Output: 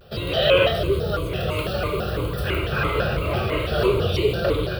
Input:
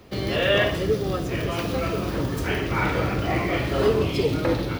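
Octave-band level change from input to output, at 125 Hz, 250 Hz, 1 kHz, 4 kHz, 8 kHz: +1.5 dB, -3.0 dB, +1.0 dB, +4.0 dB, -3.5 dB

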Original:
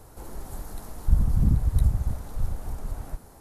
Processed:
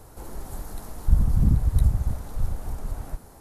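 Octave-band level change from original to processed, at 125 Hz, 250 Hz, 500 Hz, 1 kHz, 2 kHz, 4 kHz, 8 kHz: +1.5 dB, +1.5 dB, +1.5 dB, +1.5 dB, no reading, no reading, +1.5 dB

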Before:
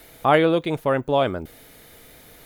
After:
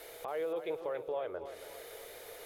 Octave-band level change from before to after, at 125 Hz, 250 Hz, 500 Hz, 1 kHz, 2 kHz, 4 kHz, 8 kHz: -32.0 dB, -24.0 dB, -14.5 dB, -20.5 dB, -20.5 dB, -19.0 dB, no reading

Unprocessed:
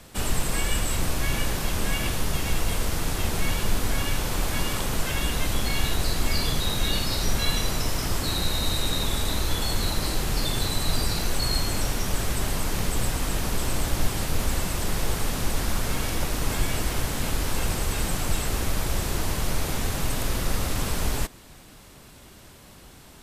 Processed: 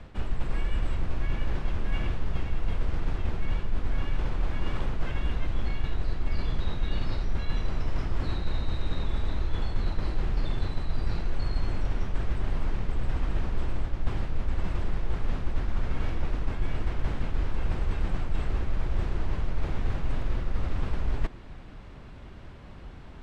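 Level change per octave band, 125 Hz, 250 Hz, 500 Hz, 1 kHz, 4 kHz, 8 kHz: -2.5 dB, -6.0 dB, -7.5 dB, -8.5 dB, -17.0 dB, -29.5 dB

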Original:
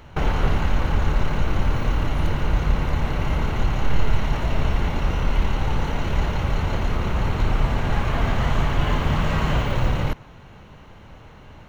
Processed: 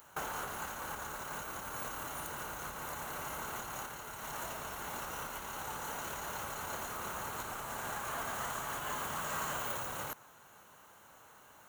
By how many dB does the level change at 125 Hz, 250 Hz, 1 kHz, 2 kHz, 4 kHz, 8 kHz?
-29.5 dB, -22.5 dB, -10.0 dB, -10.5 dB, -12.5 dB, no reading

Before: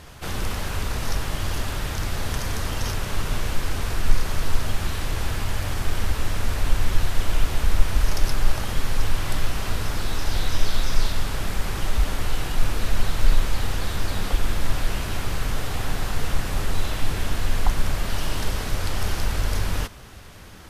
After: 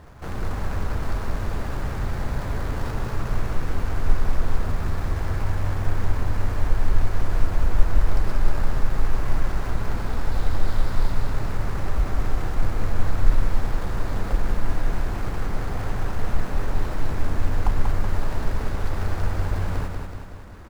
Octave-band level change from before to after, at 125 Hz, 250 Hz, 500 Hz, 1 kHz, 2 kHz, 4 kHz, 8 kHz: +1.0 dB, +0.5 dB, +0.5 dB, -0.5 dB, -4.0 dB, -12.0 dB, -12.0 dB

